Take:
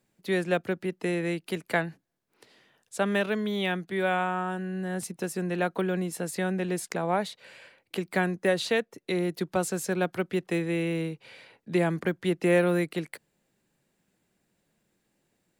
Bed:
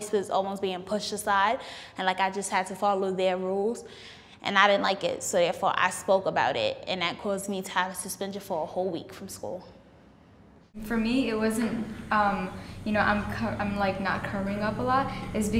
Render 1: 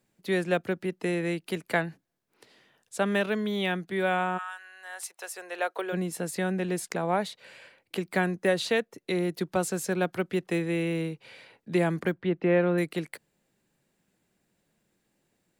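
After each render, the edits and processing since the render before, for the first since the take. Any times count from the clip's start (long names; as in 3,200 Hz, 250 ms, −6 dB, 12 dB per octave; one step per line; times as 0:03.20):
0:04.37–0:05.92: high-pass filter 1,200 Hz → 390 Hz 24 dB per octave
0:12.14–0:12.78: high-frequency loss of the air 320 metres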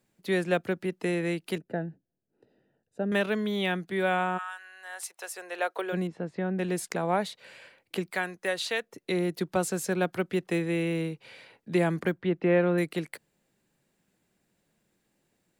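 0:01.58–0:03.12: moving average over 40 samples
0:06.07–0:06.59: head-to-tape spacing loss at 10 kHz 38 dB
0:08.10–0:08.84: parametric band 170 Hz −14 dB 2.9 octaves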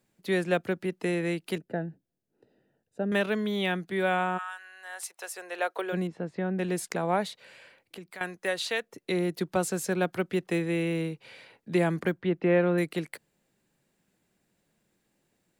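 0:07.39–0:08.21: downward compressor 2 to 1, threshold −49 dBFS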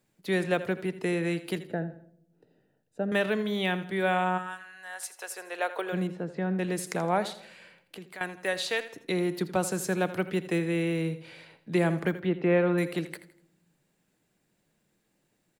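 repeating echo 82 ms, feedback 37%, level −14.5 dB
rectangular room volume 2,300 cubic metres, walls furnished, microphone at 0.47 metres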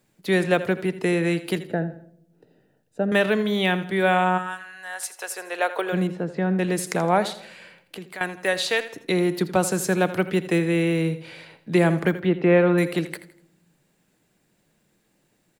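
level +6.5 dB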